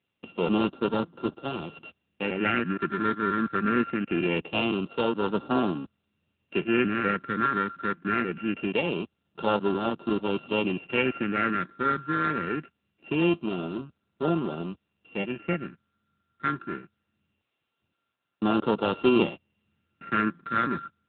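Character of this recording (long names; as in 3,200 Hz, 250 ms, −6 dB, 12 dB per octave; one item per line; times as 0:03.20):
a buzz of ramps at a fixed pitch in blocks of 32 samples
phaser sweep stages 6, 0.23 Hz, lowest notch 740–2,100 Hz
AMR narrowband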